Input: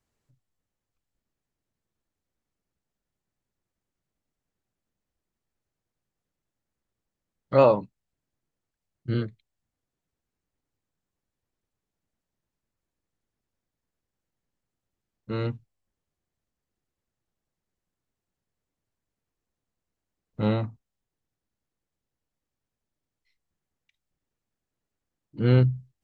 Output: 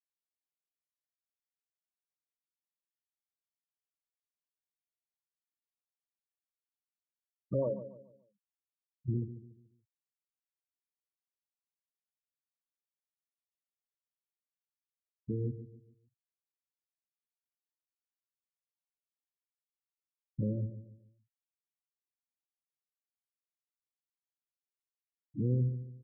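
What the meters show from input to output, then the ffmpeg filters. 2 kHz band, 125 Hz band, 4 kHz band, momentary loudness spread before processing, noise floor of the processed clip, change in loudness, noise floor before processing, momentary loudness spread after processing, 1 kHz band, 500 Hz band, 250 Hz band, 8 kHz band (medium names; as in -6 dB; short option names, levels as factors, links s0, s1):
under -40 dB, -8.5 dB, under -30 dB, 18 LU, under -85 dBFS, -11.5 dB, under -85 dBFS, 18 LU, -28.5 dB, -14.0 dB, -9.0 dB, no reading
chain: -filter_complex "[0:a]equalizer=f=760:t=o:w=0.45:g=-6,asplit=2[s0][s1];[s1]acrusher=samples=22:mix=1:aa=0.000001,volume=0.531[s2];[s0][s2]amix=inputs=2:normalize=0,acompressor=threshold=0.0126:ratio=2.5,lowshelf=f=210:g=3,afftfilt=real='re*gte(hypot(re,im),0.0631)':imag='im*gte(hypot(re,im),0.0631)':win_size=1024:overlap=0.75,asplit=2[s3][s4];[s4]adelay=143,lowpass=f=2000:p=1,volume=0.251,asplit=2[s5][s6];[s6]adelay=143,lowpass=f=2000:p=1,volume=0.37,asplit=2[s7][s8];[s8]adelay=143,lowpass=f=2000:p=1,volume=0.37,asplit=2[s9][s10];[s10]adelay=143,lowpass=f=2000:p=1,volume=0.37[s11];[s5][s7][s9][s11]amix=inputs=4:normalize=0[s12];[s3][s12]amix=inputs=2:normalize=0"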